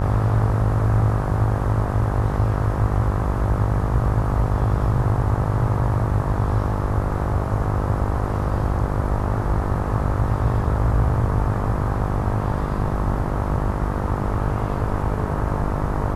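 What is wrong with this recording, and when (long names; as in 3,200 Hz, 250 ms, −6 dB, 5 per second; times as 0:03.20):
mains buzz 50 Hz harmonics 26 −25 dBFS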